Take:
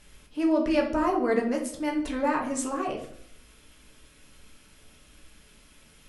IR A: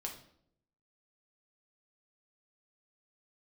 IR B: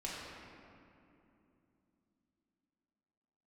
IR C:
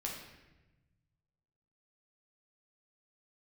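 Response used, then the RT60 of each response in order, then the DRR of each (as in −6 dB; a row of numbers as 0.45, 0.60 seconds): A; 0.70, 2.9, 1.1 seconds; 0.0, −6.5, −2.0 decibels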